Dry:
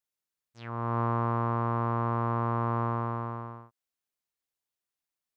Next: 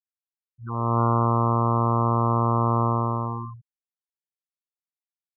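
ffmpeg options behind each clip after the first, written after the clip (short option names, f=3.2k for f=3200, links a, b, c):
-af "afftfilt=real='re*gte(hypot(re,im),0.0355)':imag='im*gte(hypot(re,im),0.0355)':win_size=1024:overlap=0.75,volume=7.5dB"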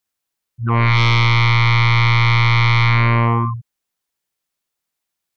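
-af "aeval=exprs='0.316*sin(PI/2*3.98*val(0)/0.316)':c=same"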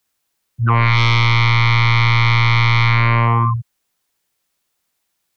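-filter_complex "[0:a]acrossover=split=140|580[a][b][c];[a]acompressor=threshold=-24dB:ratio=4[d];[b]acompressor=threshold=-37dB:ratio=4[e];[c]acompressor=threshold=-24dB:ratio=4[f];[d][e][f]amix=inputs=3:normalize=0,volume=8.5dB"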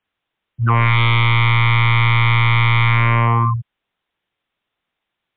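-ar 8000 -c:a libmp3lame -b:a 40k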